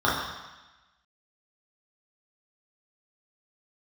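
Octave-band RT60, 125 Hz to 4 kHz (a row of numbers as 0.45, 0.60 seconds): 1.0, 1.0, 1.0, 1.2, 1.2, 1.2 seconds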